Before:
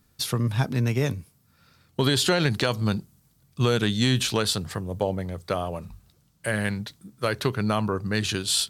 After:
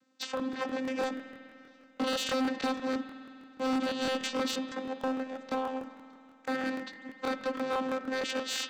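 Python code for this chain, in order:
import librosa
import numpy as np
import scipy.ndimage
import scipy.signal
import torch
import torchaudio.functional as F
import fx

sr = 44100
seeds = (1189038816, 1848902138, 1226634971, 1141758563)

y = fx.cycle_switch(x, sr, every=2, mode='inverted')
y = fx.low_shelf(y, sr, hz=480.0, db=-9.0)
y = fx.vocoder(y, sr, bands=16, carrier='saw', carrier_hz=261.0)
y = np.clip(10.0 ** (26.5 / 20.0) * y, -1.0, 1.0) / 10.0 ** (26.5 / 20.0)
y = fx.rev_spring(y, sr, rt60_s=2.8, pass_ms=(49,), chirp_ms=30, drr_db=8.0)
y = fx.buffer_crackle(y, sr, first_s=0.35, period_s=0.16, block=1024, kind='repeat')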